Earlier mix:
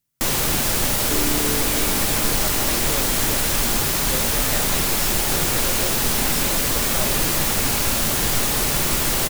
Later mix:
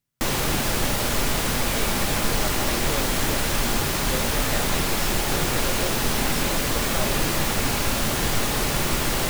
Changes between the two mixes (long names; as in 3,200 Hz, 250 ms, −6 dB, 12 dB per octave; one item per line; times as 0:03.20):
second sound: muted
master: add high-shelf EQ 5,400 Hz −8.5 dB